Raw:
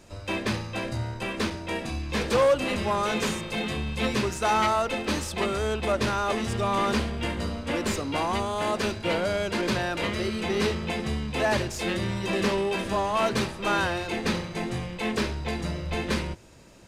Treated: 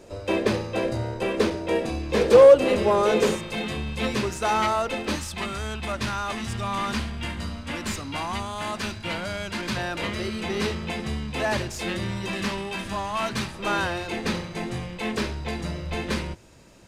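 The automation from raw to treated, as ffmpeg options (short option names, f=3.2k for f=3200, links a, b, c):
-af "asetnsamples=n=441:p=0,asendcmd='3.36 equalizer g 0.5;5.16 equalizer g -11;9.77 equalizer g -2.5;12.29 equalizer g -10;13.54 equalizer g -0.5',equalizer=f=460:t=o:w=1.1:g=12"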